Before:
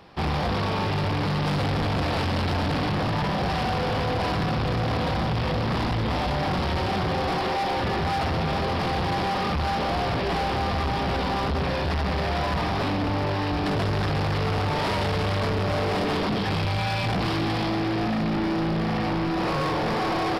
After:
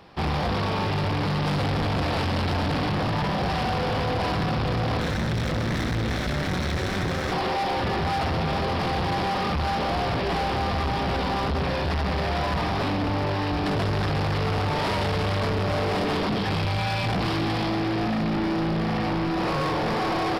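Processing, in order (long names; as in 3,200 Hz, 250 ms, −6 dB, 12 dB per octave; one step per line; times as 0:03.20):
0:04.99–0:07.32: lower of the sound and its delayed copy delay 0.52 ms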